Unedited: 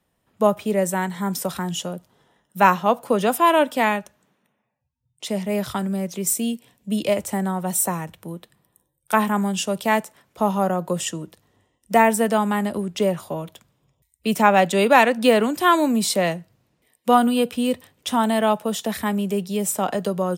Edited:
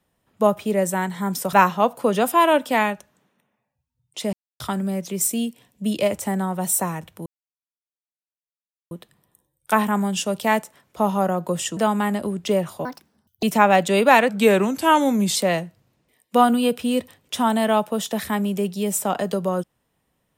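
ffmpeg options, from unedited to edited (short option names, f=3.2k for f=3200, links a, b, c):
-filter_complex "[0:a]asplit=10[a][b][c][d][e][f][g][h][i][j];[a]atrim=end=1.532[k];[b]atrim=start=2.588:end=5.39,asetpts=PTS-STARTPTS,afade=t=out:st=2.798:d=0.004:c=hsin[l];[c]atrim=start=5.39:end=5.66,asetpts=PTS-STARTPTS,volume=0[m];[d]atrim=start=5.66:end=8.32,asetpts=PTS-STARTPTS,afade=t=in:d=0.004:c=hsin,afade=t=out:st=2.656:d=0.004:c=hsin,apad=pad_dur=1.65[n];[e]atrim=start=8.32:end=11.182,asetpts=PTS-STARTPTS,afade=t=in:d=0.004:c=hsin[o];[f]atrim=start=12.278:end=13.364[p];[g]atrim=start=13.36:end=14.27,asetpts=PTS-STARTPTS,asetrate=69237,aresample=44100,atrim=end_sample=25561,asetpts=PTS-STARTPTS[q];[h]atrim=start=14.266:end=15.134[r];[i]atrim=start=15.13:end=16.09,asetpts=PTS-STARTPTS,asetrate=39690,aresample=44100[s];[j]atrim=start=16.086[t];[l][m][n][o]concat=n=4:v=0:a=1[u];[k][u]acrossfade=d=0.004:c1=hsin:c2=hsin[v];[v][p]acrossfade=d=0.004:c1=hsin:c2=hsin[w];[w][q]acrossfade=d=0.004:c1=hsin:c2=hsin[x];[x][r]acrossfade=d=0.004:c1=hsin:c2=hsin[y];[y][s]acrossfade=d=0.004:c1=hsin:c2=hsin[z];[z][t]acrossfade=d=0.004:c1=hsin:c2=hsin"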